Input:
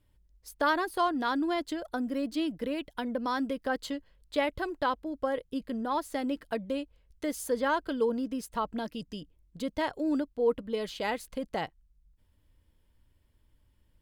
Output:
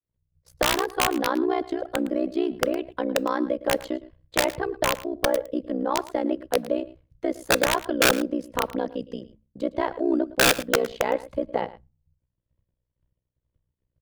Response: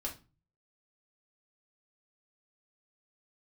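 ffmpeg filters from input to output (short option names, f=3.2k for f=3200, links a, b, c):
-filter_complex "[0:a]agate=range=-33dB:threshold=-53dB:ratio=3:detection=peak,lowpass=f=1.4k:p=1,equalizer=f=470:w=3.9:g=9,bandreject=f=60:t=h:w=6,bandreject=f=120:t=h:w=6,bandreject=f=180:t=h:w=6,afreqshift=35,tremolo=f=62:d=0.947,aeval=exprs='(mod(10*val(0)+1,2)-1)/10':c=same,aecho=1:1:111:0.133,asplit=2[a][b];[1:a]atrim=start_sample=2205[c];[b][c]afir=irnorm=-1:irlink=0,volume=-22.5dB[d];[a][d]amix=inputs=2:normalize=0,volume=8.5dB"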